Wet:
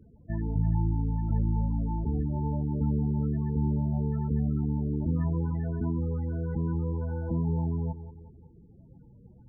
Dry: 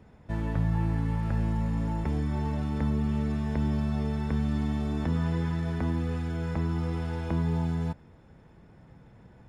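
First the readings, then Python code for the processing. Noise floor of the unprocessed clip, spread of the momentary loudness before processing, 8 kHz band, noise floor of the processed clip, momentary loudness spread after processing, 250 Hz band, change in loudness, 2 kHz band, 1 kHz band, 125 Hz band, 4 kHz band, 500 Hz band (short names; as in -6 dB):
-54 dBFS, 3 LU, n/a, -54 dBFS, 4 LU, -0.5 dB, 0.0 dB, under -10 dB, -3.5 dB, +1.0 dB, under -35 dB, -1.5 dB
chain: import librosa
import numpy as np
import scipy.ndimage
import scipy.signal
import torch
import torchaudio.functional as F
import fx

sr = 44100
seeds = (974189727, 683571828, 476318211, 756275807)

y = fx.echo_bbd(x, sr, ms=184, stages=4096, feedback_pct=51, wet_db=-12.0)
y = fx.spec_topn(y, sr, count=16)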